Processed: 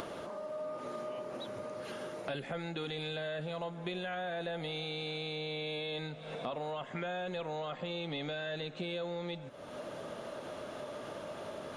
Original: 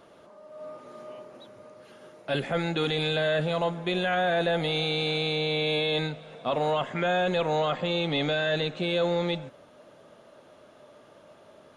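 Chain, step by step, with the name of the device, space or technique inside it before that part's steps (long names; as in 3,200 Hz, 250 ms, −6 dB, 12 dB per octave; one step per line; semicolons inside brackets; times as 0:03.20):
upward and downward compression (upward compression, threshold −32 dBFS; downward compressor 6 to 1, threshold −36 dBFS, peak gain reduction 13.5 dB)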